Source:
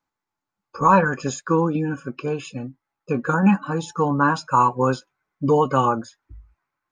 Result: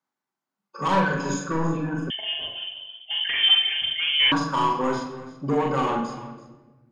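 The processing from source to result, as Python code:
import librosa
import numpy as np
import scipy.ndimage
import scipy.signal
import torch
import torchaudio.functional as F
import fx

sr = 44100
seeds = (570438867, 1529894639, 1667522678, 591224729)

y = scipy.signal.sosfilt(scipy.signal.butter(4, 140.0, 'highpass', fs=sr, output='sos'), x)
y = fx.notch(y, sr, hz=2400.0, q=22.0)
y = 10.0 ** (-15.5 / 20.0) * np.tanh(y / 10.0 ** (-15.5 / 20.0))
y = fx.doubler(y, sr, ms=43.0, db=-3)
y = y + 10.0 ** (-17.0 / 20.0) * np.pad(y, (int(333 * sr / 1000.0), 0))[:len(y)]
y = fx.room_shoebox(y, sr, seeds[0], volume_m3=760.0, walls='mixed', distance_m=1.1)
y = fx.freq_invert(y, sr, carrier_hz=3300, at=(2.1, 4.32))
y = F.gain(torch.from_numpy(y), -5.0).numpy()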